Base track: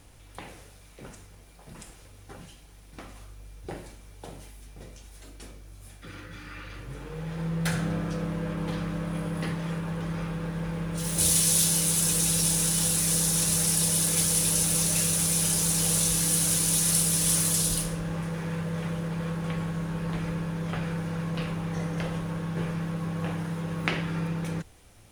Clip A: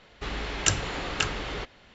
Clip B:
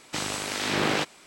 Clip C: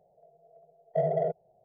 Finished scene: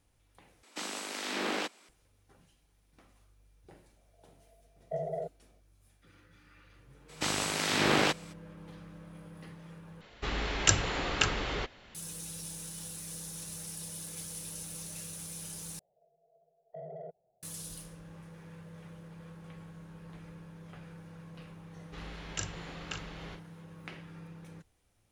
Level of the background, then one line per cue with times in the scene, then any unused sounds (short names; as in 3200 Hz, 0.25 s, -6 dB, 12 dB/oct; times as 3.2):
base track -18 dB
0.63 replace with B -8 dB + steep high-pass 190 Hz 48 dB/oct
3.96 add C -8.5 dB
7.08 add B -1 dB, fades 0.02 s
10.01 replace with A -0.5 dB
15.79 replace with C -10.5 dB + limiter -26.5 dBFS
21.71 add A -14 dB + doubler 39 ms -7 dB